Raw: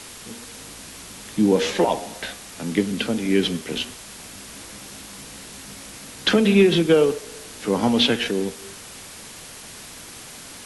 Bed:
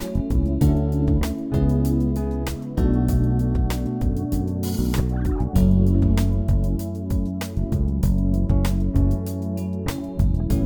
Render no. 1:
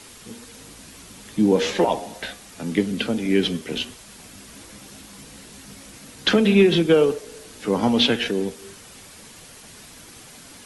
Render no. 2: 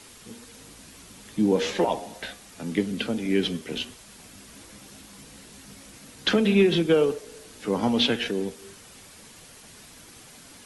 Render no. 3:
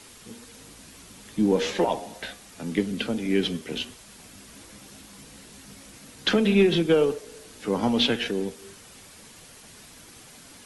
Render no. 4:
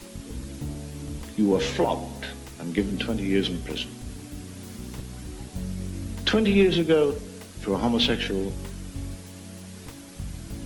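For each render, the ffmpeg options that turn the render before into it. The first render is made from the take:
ffmpeg -i in.wav -af "afftdn=noise_reduction=6:noise_floor=-40" out.wav
ffmpeg -i in.wav -af "volume=-4dB" out.wav
ffmpeg -i in.wav -af "aeval=exprs='0.355*(cos(1*acos(clip(val(0)/0.355,-1,1)))-cos(1*PI/2))+0.0126*(cos(4*acos(clip(val(0)/0.355,-1,1)))-cos(4*PI/2))+0.0126*(cos(6*acos(clip(val(0)/0.355,-1,1)))-cos(6*PI/2))+0.00708*(cos(8*acos(clip(val(0)/0.355,-1,1)))-cos(8*PI/2))':channel_layout=same" out.wav
ffmpeg -i in.wav -i bed.wav -filter_complex "[1:a]volume=-16dB[link_01];[0:a][link_01]amix=inputs=2:normalize=0" out.wav

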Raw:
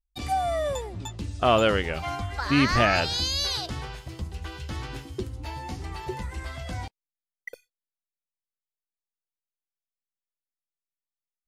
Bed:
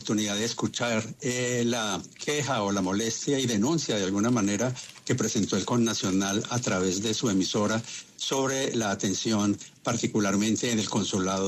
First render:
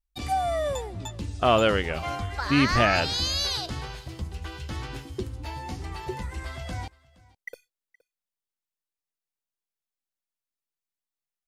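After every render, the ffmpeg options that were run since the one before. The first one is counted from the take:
ffmpeg -i in.wav -af "aecho=1:1:469:0.0668" out.wav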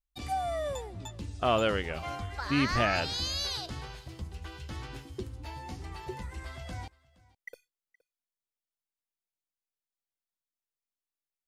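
ffmpeg -i in.wav -af "volume=-6dB" out.wav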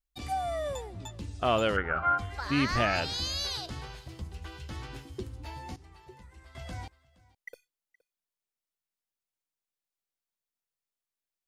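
ffmpeg -i in.wav -filter_complex "[0:a]asplit=3[link_01][link_02][link_03];[link_01]afade=type=out:start_time=1.76:duration=0.02[link_04];[link_02]lowpass=frequency=1400:width_type=q:width=12,afade=type=in:start_time=1.76:duration=0.02,afade=type=out:start_time=2.17:duration=0.02[link_05];[link_03]afade=type=in:start_time=2.17:duration=0.02[link_06];[link_04][link_05][link_06]amix=inputs=3:normalize=0,asplit=3[link_07][link_08][link_09];[link_07]atrim=end=5.762[link_10];[link_08]atrim=start=5.758:end=6.552,asetpts=PTS-STARTPTS,volume=-12dB[link_11];[link_09]atrim=start=6.548[link_12];[link_10][link_11]acrossfade=duration=0.004:curve1=hsin:curve2=hsin[link_13];[link_13][link_12]acrossfade=duration=0.004:curve1=hsin:curve2=hsin" out.wav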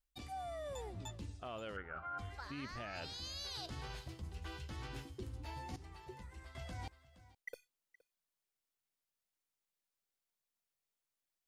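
ffmpeg -i in.wav -af "alimiter=limit=-22.5dB:level=0:latency=1:release=388,areverse,acompressor=threshold=-42dB:ratio=10,areverse" out.wav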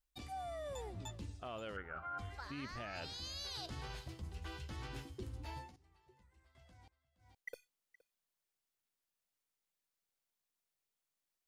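ffmpeg -i in.wav -filter_complex "[0:a]asplit=3[link_01][link_02][link_03];[link_01]atrim=end=5.72,asetpts=PTS-STARTPTS,afade=type=out:start_time=5.57:duration=0.15:silence=0.141254[link_04];[link_02]atrim=start=5.72:end=7.18,asetpts=PTS-STARTPTS,volume=-17dB[link_05];[link_03]atrim=start=7.18,asetpts=PTS-STARTPTS,afade=type=in:duration=0.15:silence=0.141254[link_06];[link_04][link_05][link_06]concat=n=3:v=0:a=1" out.wav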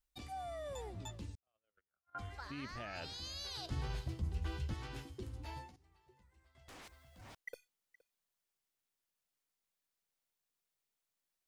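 ffmpeg -i in.wav -filter_complex "[0:a]asettb=1/sr,asplit=3[link_01][link_02][link_03];[link_01]atrim=end=1.354[link_04];[link_02]atrim=start=1.35:end=2.15,asetpts=PTS-STARTPTS,afade=type=in:duration=0.004:curve=qsin,afade=type=out:start_time=0.796:duration=0.004:curve=qsin,agate=range=-52dB:threshold=-40dB:ratio=16:release=100:detection=peak[link_05];[link_03]atrim=start=2.146[link_06];[link_04][link_05]acrossfade=duration=0.004:curve1=hsin:curve2=qsin[link_07];[link_07][link_06]acrossfade=duration=0.004:curve1=qsin:curve2=hsin,asettb=1/sr,asplit=3[link_08][link_09][link_10];[link_08]atrim=end=3.714[link_11];[link_09]atrim=start=3.71:end=4.74,asetpts=PTS-STARTPTS,afade=type=in:duration=0.004:curve=qsin,afade=type=out:start_time=1.026:duration=0.004:curve=qsin,lowshelf=frequency=360:gain=9[link_12];[link_10]atrim=start=4.736[link_13];[link_11][link_12]acrossfade=duration=0.004:curve1=hsin:curve2=qsin[link_14];[link_14][link_13]acrossfade=duration=0.004:curve1=qsin:curve2=hsin,asettb=1/sr,asplit=3[link_15][link_16][link_17];[link_15]atrim=end=6.684[link_18];[link_16]atrim=start=6.68:end=7.35,asetpts=PTS-STARTPTS,afade=type=in:duration=0.004:curve=qsin,afade=type=out:start_time=0.666:duration=0.004:curve=qsin,aeval=exprs='0.00266*sin(PI/2*6.31*val(0)/0.00266)':channel_layout=same[link_19];[link_17]atrim=start=7.346[link_20];[link_18][link_19]acrossfade=duration=0.004:curve1=hsin:curve2=qsin[link_21];[link_21][link_20]acrossfade=duration=0.004:curve1=qsin:curve2=hsin" out.wav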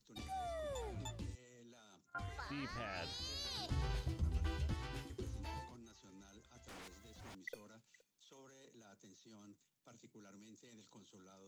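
ffmpeg -i in.wav -i bed.wav -filter_complex "[1:a]volume=-35dB[link_01];[0:a][link_01]amix=inputs=2:normalize=0" out.wav

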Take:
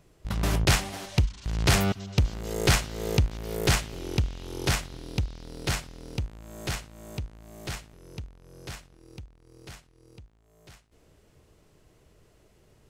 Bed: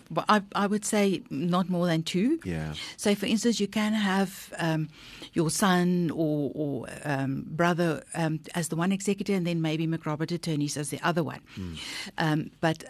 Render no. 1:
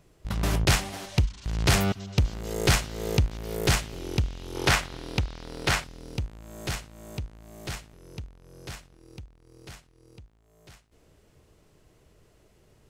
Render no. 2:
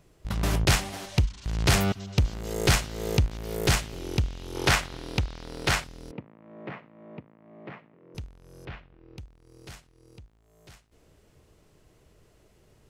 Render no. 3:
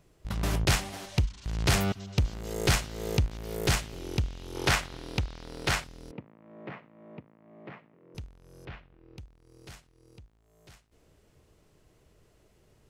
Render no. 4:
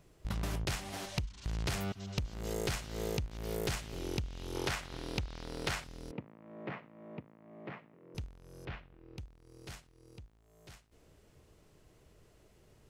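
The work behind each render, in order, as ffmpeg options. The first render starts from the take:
ffmpeg -i in.wav -filter_complex "[0:a]asettb=1/sr,asplit=3[link_01][link_02][link_03];[link_01]atrim=end=4.554[link_04];[link_02]atrim=start=4.55:end=5.84,asetpts=PTS-STARTPTS,afade=type=in:duration=0.004:curve=qsin,afade=type=out:start_time=1.286:duration=0.004:curve=qsin,equalizer=frequency=1400:width=0.37:gain=8[link_05];[link_03]atrim=start=5.836[link_06];[link_04][link_05]acrossfade=duration=0.004:curve1=hsin:curve2=qsin[link_07];[link_07][link_06]acrossfade=duration=0.004:curve1=qsin:curve2=hsin" out.wav
ffmpeg -i in.wav -filter_complex "[0:a]asettb=1/sr,asplit=3[link_01][link_02][link_03];[link_01]atrim=end=6.114[link_04];[link_02]atrim=start=6.11:end=8.15,asetpts=PTS-STARTPTS,afade=type=in:duration=0.004:curve=qsin,afade=type=out:start_time=2.036:duration=0.004:curve=qsin,highpass=frequency=170:width=0.5412,highpass=frequency=170:width=1.3066,equalizer=frequency=380:width_type=q:width=4:gain=-3,equalizer=frequency=780:width_type=q:width=4:gain=-4,equalizer=frequency=1500:width_type=q:width=4:gain=-8,lowpass=frequency=2000:width=0.5412,lowpass=frequency=2000:width=1.3066[link_05];[link_03]atrim=start=8.146[link_06];[link_04][link_05]acrossfade=duration=0.004:curve1=hsin:curve2=qsin[link_07];[link_07][link_06]acrossfade=duration=0.004:curve1=qsin:curve2=hsin,asettb=1/sr,asplit=3[link_08][link_09][link_10];[link_08]atrim=end=8.654[link_11];[link_09]atrim=start=8.65:end=9.18,asetpts=PTS-STARTPTS,afade=type=in:duration=0.004:curve=qsin,afade=type=out:start_time=0.526:duration=0.004:curve=qsin,lowpass=frequency=2900:width=0.5412,lowpass=frequency=2900:width=1.3066[link_12];[link_10]atrim=start=9.176[link_13];[link_11][link_12]acrossfade=duration=0.004:curve1=hsin:curve2=qsin[link_14];[link_14][link_13]acrossfade=duration=0.004:curve1=qsin:curve2=hsin" out.wav
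ffmpeg -i in.wav -af "volume=-3dB" out.wav
ffmpeg -i in.wav -af "acompressor=threshold=-32dB:ratio=12" out.wav

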